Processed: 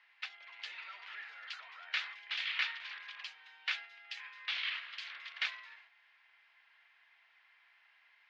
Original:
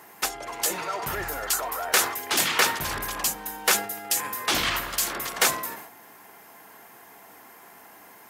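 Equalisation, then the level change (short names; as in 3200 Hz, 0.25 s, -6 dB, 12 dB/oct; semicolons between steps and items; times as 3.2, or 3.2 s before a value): Butterworth band-pass 3000 Hz, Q 1.2; air absorption 270 m; -4.0 dB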